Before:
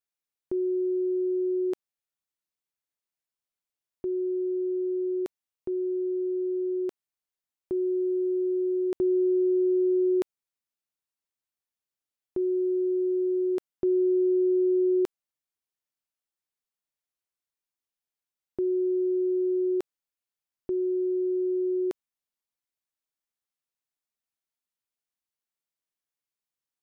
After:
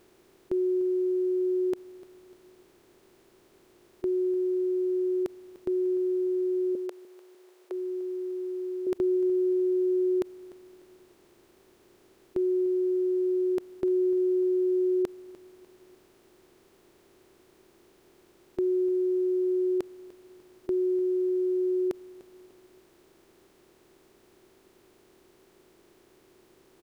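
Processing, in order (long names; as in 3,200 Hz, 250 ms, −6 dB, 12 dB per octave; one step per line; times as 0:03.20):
compressor on every frequency bin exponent 0.4
0:06.75–0:08.87: Butterworth high-pass 410 Hz 36 dB per octave
repeating echo 298 ms, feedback 43%, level −18.5 dB
level −1.5 dB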